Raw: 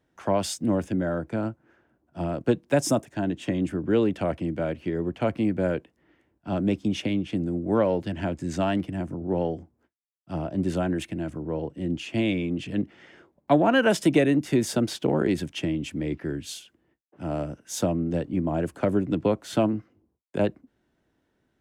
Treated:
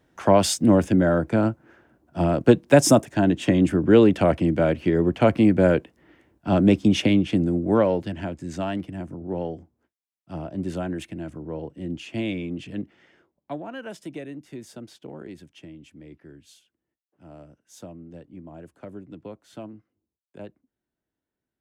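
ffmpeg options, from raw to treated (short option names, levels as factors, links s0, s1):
-af "volume=2.37,afade=t=out:st=7.1:d=1.21:silence=0.298538,afade=t=out:st=12.55:d=1.1:silence=0.223872"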